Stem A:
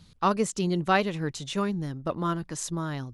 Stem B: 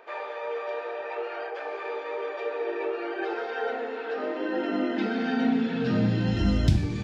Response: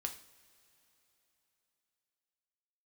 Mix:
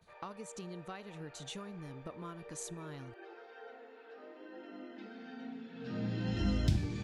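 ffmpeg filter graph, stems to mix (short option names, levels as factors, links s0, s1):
-filter_complex "[0:a]bandreject=f=5200:w=11,agate=range=0.0224:threshold=0.00447:ratio=3:detection=peak,acompressor=threshold=0.0178:ratio=16,volume=0.398,asplit=2[s0][s1];[s1]volume=0.133[s2];[1:a]volume=0.376,afade=t=in:st=5.72:d=0.69:silence=0.223872[s3];[2:a]atrim=start_sample=2205[s4];[s2][s4]afir=irnorm=-1:irlink=0[s5];[s0][s3][s5]amix=inputs=3:normalize=0,highshelf=f=5200:g=4.5"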